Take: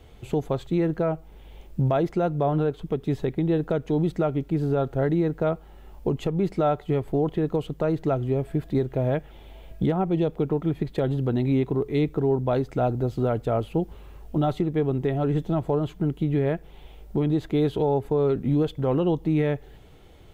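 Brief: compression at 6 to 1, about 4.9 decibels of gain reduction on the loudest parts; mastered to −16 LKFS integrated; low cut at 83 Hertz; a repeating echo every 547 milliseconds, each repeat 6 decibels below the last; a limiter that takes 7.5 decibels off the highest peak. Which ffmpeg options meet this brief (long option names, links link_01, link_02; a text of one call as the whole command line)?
ffmpeg -i in.wav -af "highpass=83,acompressor=threshold=-24dB:ratio=6,alimiter=limit=-22dB:level=0:latency=1,aecho=1:1:547|1094|1641|2188|2735|3282:0.501|0.251|0.125|0.0626|0.0313|0.0157,volume=15dB" out.wav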